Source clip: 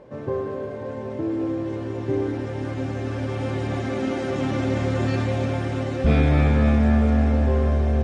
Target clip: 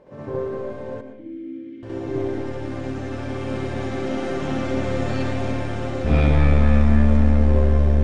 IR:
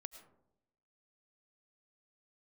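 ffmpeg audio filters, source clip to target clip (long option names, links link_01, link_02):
-filter_complex "[0:a]aeval=exprs='(tanh(3.16*val(0)+0.65)-tanh(0.65))/3.16':channel_layout=same,asettb=1/sr,asplit=3[link_01][link_02][link_03];[link_01]atrim=end=0.944[link_04];[link_02]atrim=start=0.94:end=1.83,asetpts=PTS-STARTPTS,afade=type=in:duration=0.004:curve=qsin,afade=type=out:start_time=0.886:duration=0.004:curve=qsin,asplit=3[link_05][link_06][link_07];[link_05]bandpass=frequency=270:width_type=q:width=8,volume=0dB[link_08];[link_06]bandpass=frequency=2290:width_type=q:width=8,volume=-6dB[link_09];[link_07]bandpass=frequency=3010:width_type=q:width=8,volume=-9dB[link_10];[link_08][link_09][link_10]amix=inputs=3:normalize=0[link_11];[link_03]atrim=start=1.826[link_12];[link_04][link_11]acrossfade=duration=0.004:curve1=hsin:curve2=qsin[link_13];[link_13][link_12]acrossfade=duration=0.004:curve1=qsin:curve2=hsin,asplit=2[link_14][link_15];[1:a]atrim=start_sample=2205,adelay=67[link_16];[link_15][link_16]afir=irnorm=-1:irlink=0,volume=9dB[link_17];[link_14][link_17]amix=inputs=2:normalize=0,volume=-2dB"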